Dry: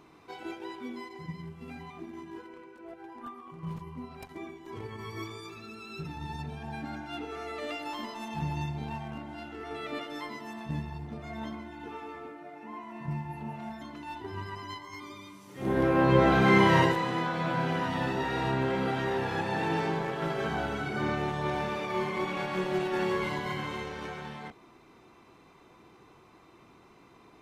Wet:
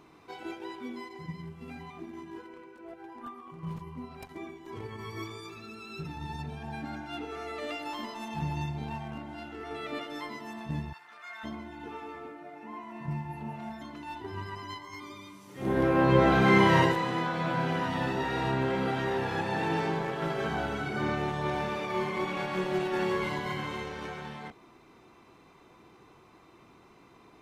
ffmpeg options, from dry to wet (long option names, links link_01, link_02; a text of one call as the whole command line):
ffmpeg -i in.wav -filter_complex "[0:a]asplit=3[link_01][link_02][link_03];[link_01]afade=type=out:start_time=10.92:duration=0.02[link_04];[link_02]highpass=frequency=1400:width_type=q:width=2.3,afade=type=in:start_time=10.92:duration=0.02,afade=type=out:start_time=11.43:duration=0.02[link_05];[link_03]afade=type=in:start_time=11.43:duration=0.02[link_06];[link_04][link_05][link_06]amix=inputs=3:normalize=0" out.wav